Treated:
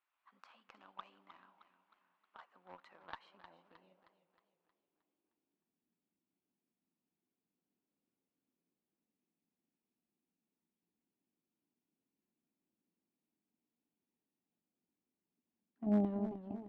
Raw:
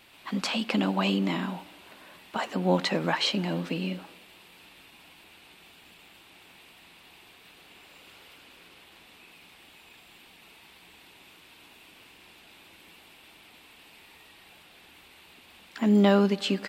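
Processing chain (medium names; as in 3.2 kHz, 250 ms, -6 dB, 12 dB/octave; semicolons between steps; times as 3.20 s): band-pass sweep 1.2 kHz -> 230 Hz, 3.03–5.73 s; Chebyshev shaper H 3 -11 dB, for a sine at -16.5 dBFS; modulated delay 311 ms, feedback 48%, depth 89 cents, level -11.5 dB; trim -8.5 dB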